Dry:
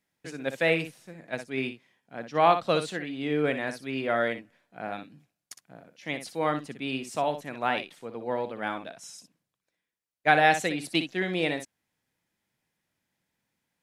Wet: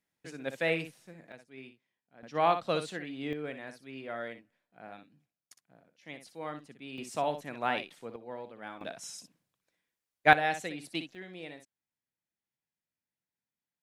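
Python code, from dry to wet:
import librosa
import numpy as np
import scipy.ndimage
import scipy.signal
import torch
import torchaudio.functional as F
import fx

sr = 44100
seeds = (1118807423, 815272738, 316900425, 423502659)

y = fx.gain(x, sr, db=fx.steps((0.0, -5.5), (1.32, -18.0), (2.23, -5.5), (3.33, -12.5), (6.98, -3.5), (8.16, -12.0), (8.81, 1.0), (10.33, -9.5), (11.15, -17.0)))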